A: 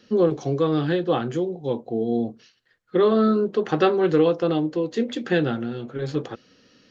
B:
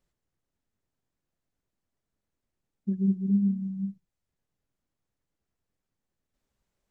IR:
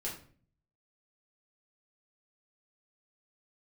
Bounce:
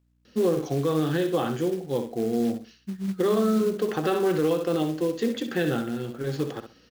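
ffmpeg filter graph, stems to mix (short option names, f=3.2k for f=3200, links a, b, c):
-filter_complex "[0:a]adelay=250,volume=-1.5dB,asplit=2[a][b];[b]volume=-9dB[c];[1:a]highpass=f=110:w=0.5412,highpass=f=110:w=1.3066,acontrast=86,aeval=exprs='val(0)+0.00224*(sin(2*PI*60*n/s)+sin(2*PI*2*60*n/s)/2+sin(2*PI*3*60*n/s)/3+sin(2*PI*4*60*n/s)/4+sin(2*PI*5*60*n/s)/5)':c=same,volume=-11.5dB[d];[c]aecho=0:1:64|128|192|256:1|0.23|0.0529|0.0122[e];[a][d][e]amix=inputs=3:normalize=0,lowshelf=f=63:g=-3.5,acrusher=bits=5:mode=log:mix=0:aa=0.000001,alimiter=limit=-15.5dB:level=0:latency=1:release=58"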